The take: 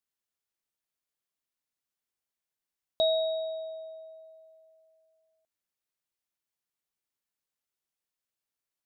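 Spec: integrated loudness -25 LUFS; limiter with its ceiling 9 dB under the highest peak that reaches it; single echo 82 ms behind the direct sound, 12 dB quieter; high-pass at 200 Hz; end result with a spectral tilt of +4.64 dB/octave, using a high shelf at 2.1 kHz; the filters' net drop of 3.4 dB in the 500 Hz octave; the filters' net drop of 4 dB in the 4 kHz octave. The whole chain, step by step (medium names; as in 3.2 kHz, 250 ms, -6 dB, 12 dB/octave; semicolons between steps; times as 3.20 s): high-pass 200 Hz; peaking EQ 500 Hz -5.5 dB; treble shelf 2.1 kHz +5 dB; peaking EQ 4 kHz -8 dB; peak limiter -29 dBFS; delay 82 ms -12 dB; trim +14.5 dB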